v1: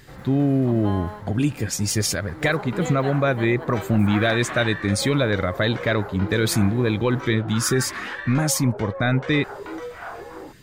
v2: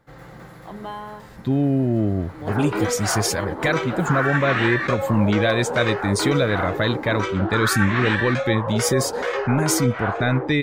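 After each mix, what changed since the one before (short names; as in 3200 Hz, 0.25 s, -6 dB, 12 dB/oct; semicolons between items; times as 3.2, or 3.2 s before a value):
speech: entry +1.20 s; second sound +9.0 dB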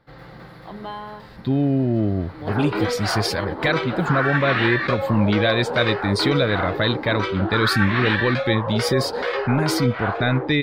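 master: add resonant high shelf 5500 Hz -6.5 dB, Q 3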